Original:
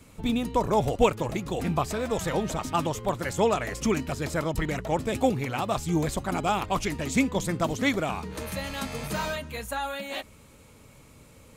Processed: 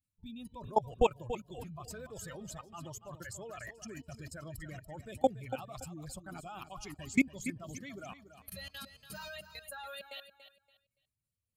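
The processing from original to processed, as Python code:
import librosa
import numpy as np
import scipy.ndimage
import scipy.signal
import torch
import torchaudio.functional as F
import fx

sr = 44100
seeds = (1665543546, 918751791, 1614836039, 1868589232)

y = fx.bin_expand(x, sr, power=2.0)
y = fx.level_steps(y, sr, step_db=23)
y = fx.echo_feedback(y, sr, ms=285, feedback_pct=24, wet_db=-11.5)
y = F.gain(torch.from_numpy(y), 1.0).numpy()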